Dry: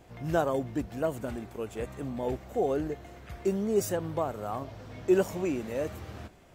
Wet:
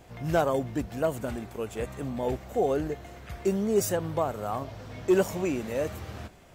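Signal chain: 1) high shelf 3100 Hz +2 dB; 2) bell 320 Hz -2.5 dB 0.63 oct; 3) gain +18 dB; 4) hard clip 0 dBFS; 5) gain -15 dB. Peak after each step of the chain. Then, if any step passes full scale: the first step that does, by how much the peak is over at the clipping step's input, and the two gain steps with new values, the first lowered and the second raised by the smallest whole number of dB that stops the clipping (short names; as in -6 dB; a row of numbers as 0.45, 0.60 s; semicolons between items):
-13.0, -13.5, +4.5, 0.0, -15.0 dBFS; step 3, 4.5 dB; step 3 +13 dB, step 5 -10 dB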